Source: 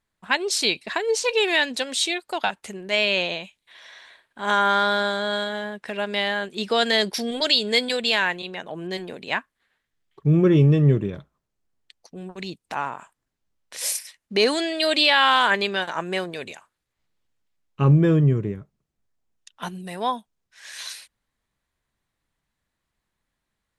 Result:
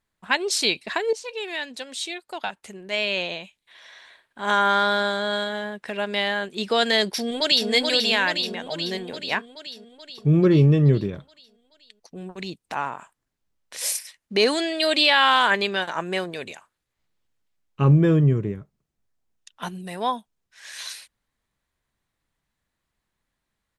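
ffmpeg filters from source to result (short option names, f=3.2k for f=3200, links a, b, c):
-filter_complex "[0:a]asplit=2[a][b];[b]afade=t=in:st=7.08:d=0.01,afade=t=out:st=7.69:d=0.01,aecho=0:1:430|860|1290|1720|2150|2580|3010|3440|3870|4300:0.668344|0.434424|0.282375|0.183544|0.119304|0.0775473|0.0504058|0.0327637|0.0212964|0.0138427[c];[a][c]amix=inputs=2:normalize=0,asplit=2[d][e];[d]atrim=end=1.13,asetpts=PTS-STARTPTS,afade=t=out:st=1.126:d=0.004:c=hsin:silence=0.223872[f];[e]atrim=start=1.13,asetpts=PTS-STARTPTS,afade=t=in:d=3.43:silence=0.223872[g];[f][g]concat=n=2:v=0:a=1"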